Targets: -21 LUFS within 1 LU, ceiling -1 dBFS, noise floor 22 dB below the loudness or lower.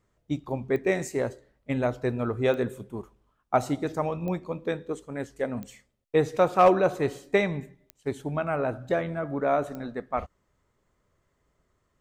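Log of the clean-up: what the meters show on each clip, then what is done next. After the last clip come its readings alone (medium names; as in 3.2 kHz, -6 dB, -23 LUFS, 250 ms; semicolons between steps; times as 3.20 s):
clicks found 6; loudness -28.0 LUFS; peak level -9.5 dBFS; loudness target -21.0 LUFS
-> de-click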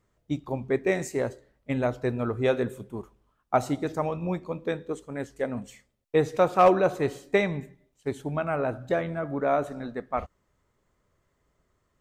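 clicks found 0; loudness -28.0 LUFS; peak level -9.5 dBFS; loudness target -21.0 LUFS
-> trim +7 dB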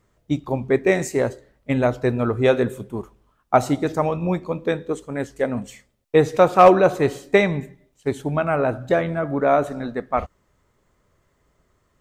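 loudness -21.0 LUFS; peak level -2.5 dBFS; noise floor -66 dBFS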